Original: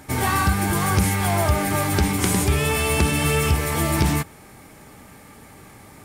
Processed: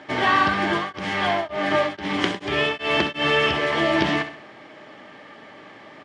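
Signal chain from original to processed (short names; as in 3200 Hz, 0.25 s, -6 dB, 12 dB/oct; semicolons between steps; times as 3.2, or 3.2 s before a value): speaker cabinet 210–4900 Hz, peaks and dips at 330 Hz +5 dB, 610 Hz +10 dB, 1100 Hz +5 dB, 1800 Hz +9 dB, 3100 Hz +10 dB; feedback echo 65 ms, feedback 42%, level -11 dB; 0.76–3.27 beating tremolo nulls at 1.6 Hz -> 3.1 Hz; gain -1.5 dB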